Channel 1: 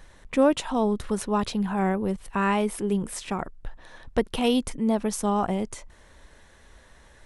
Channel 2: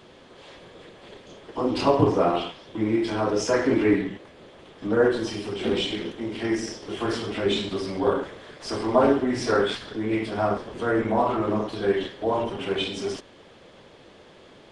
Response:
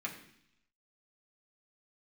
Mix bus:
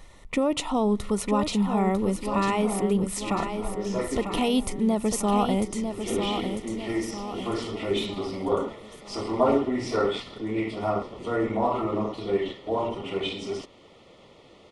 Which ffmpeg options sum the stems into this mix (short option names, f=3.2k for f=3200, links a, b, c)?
-filter_complex "[0:a]alimiter=limit=-16dB:level=0:latency=1:release=82,volume=1.5dB,asplit=4[a][b][c][d];[b]volume=-19dB[e];[c]volume=-7dB[f];[1:a]adynamicequalizer=threshold=0.00562:dfrequency=4200:dqfactor=0.7:tfrequency=4200:tqfactor=0.7:attack=5:release=100:ratio=0.375:range=2:mode=cutabove:tftype=highshelf,adelay=450,volume=-2.5dB[g];[d]apad=whole_len=668965[h];[g][h]sidechaincompress=threshold=-45dB:ratio=4:attack=42:release=326[i];[2:a]atrim=start_sample=2205[j];[e][j]afir=irnorm=-1:irlink=0[k];[f]aecho=0:1:948|1896|2844|3792|4740|5688|6636|7584:1|0.52|0.27|0.141|0.0731|0.038|0.0198|0.0103[l];[a][i][k][l]amix=inputs=4:normalize=0,asuperstop=centerf=1600:order=8:qfactor=4.8"